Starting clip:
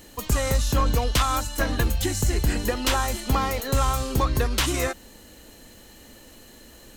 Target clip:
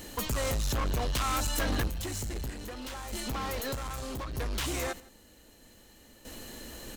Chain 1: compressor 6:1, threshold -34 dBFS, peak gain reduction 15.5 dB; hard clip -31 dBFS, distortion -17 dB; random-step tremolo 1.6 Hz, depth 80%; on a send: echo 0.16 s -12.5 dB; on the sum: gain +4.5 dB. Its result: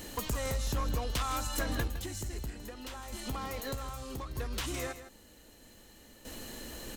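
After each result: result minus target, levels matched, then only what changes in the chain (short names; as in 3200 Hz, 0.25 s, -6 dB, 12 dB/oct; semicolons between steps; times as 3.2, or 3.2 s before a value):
compressor: peak gain reduction +8 dB; echo-to-direct +11.5 dB
change: compressor 6:1, threshold -24.5 dBFS, peak gain reduction 8 dB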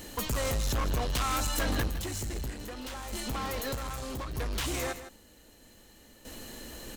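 echo-to-direct +11.5 dB
change: echo 0.16 s -24 dB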